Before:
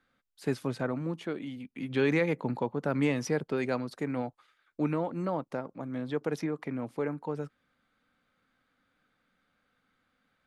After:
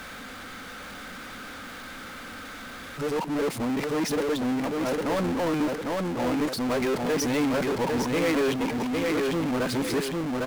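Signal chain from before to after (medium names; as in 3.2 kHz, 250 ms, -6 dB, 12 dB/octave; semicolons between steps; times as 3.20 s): reverse the whole clip; peaking EQ 140 Hz -12.5 dB 0.35 oct; feedback delay 804 ms, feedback 18%, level -6.5 dB; power-law waveshaper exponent 0.35; trim -3.5 dB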